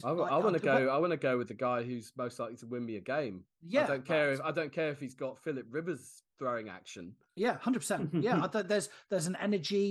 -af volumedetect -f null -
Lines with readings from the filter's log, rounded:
mean_volume: -33.4 dB
max_volume: -15.7 dB